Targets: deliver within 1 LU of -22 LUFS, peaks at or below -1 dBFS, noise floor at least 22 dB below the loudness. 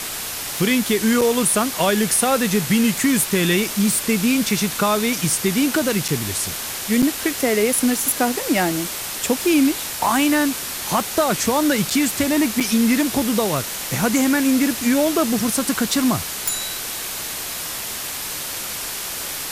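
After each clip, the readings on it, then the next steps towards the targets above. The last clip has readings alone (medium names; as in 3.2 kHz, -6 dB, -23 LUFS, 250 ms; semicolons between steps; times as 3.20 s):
dropouts 5; longest dropout 5.9 ms; noise floor -29 dBFS; noise floor target -42 dBFS; loudness -19.5 LUFS; peak level -5.5 dBFS; loudness target -22.0 LUFS
-> interpolate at 1.21/6.08/7.02/11.90/12.60 s, 5.9 ms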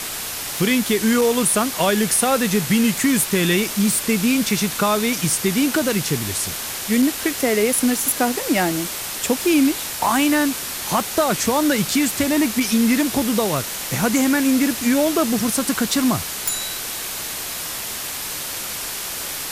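dropouts 0; noise floor -29 dBFS; noise floor target -42 dBFS
-> noise print and reduce 13 dB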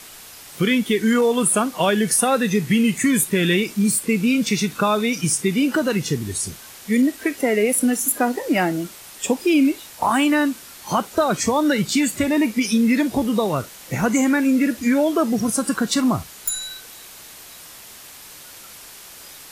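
noise floor -42 dBFS; loudness -20.0 LUFS; peak level -6.0 dBFS; loudness target -22.0 LUFS
-> trim -2 dB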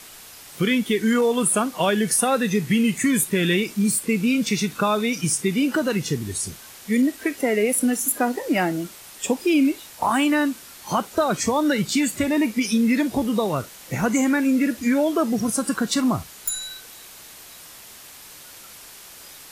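loudness -22.0 LUFS; peak level -8.0 dBFS; noise floor -44 dBFS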